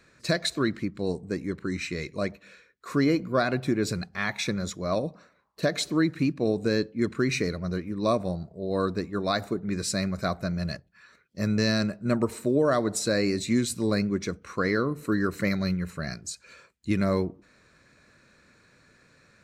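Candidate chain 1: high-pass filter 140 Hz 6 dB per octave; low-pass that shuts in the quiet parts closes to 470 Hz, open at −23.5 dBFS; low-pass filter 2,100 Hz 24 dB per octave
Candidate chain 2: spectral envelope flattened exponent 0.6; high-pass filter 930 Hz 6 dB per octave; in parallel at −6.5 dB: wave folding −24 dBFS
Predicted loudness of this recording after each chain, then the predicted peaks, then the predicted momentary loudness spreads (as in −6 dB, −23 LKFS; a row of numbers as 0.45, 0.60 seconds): −29.5, −29.0 LKFS; −12.0, −10.5 dBFS; 9, 8 LU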